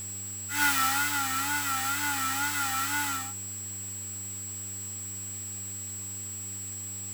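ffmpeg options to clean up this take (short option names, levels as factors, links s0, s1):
-af "adeclick=t=4,bandreject=f=97.8:t=h:w=4,bandreject=f=195.6:t=h:w=4,bandreject=f=293.4:t=h:w=4,bandreject=f=391.2:t=h:w=4,bandreject=f=7700:w=30,afwtdn=0.004"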